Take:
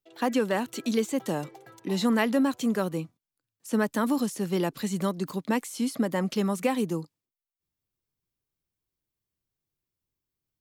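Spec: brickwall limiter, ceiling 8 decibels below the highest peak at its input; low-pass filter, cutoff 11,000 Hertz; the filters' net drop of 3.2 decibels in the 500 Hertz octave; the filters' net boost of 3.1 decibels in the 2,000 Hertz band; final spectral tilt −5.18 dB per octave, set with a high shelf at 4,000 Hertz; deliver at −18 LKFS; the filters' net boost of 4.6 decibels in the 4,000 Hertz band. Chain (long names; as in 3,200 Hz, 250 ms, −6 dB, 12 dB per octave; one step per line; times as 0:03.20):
low-pass filter 11,000 Hz
parametric band 500 Hz −4 dB
parametric band 2,000 Hz +3.5 dB
high-shelf EQ 4,000 Hz −7.5 dB
parametric band 4,000 Hz +9 dB
level +12 dB
brickwall limiter −7 dBFS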